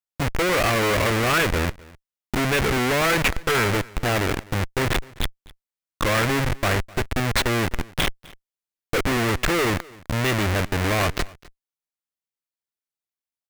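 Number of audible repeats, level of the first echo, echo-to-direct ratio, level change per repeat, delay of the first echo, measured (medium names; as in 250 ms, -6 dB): 1, -23.0 dB, -23.0 dB, no regular repeats, 255 ms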